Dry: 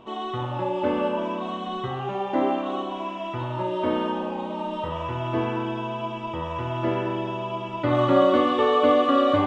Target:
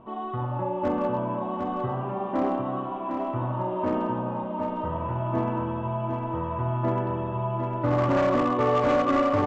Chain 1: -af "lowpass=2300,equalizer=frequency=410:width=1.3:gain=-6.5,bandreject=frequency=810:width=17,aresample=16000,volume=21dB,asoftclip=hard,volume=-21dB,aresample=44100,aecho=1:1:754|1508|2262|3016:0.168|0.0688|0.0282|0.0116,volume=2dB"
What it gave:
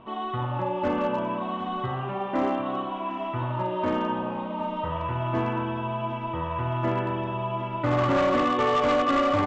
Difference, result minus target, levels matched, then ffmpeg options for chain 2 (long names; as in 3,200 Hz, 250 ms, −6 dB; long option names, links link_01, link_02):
echo-to-direct −9 dB; 2,000 Hz band +4.0 dB
-af "lowpass=1100,equalizer=frequency=410:width=1.3:gain=-6.5,bandreject=frequency=810:width=17,aresample=16000,volume=21dB,asoftclip=hard,volume=-21dB,aresample=44100,aecho=1:1:754|1508|2262|3016|3770:0.473|0.194|0.0795|0.0326|0.0134,volume=2dB"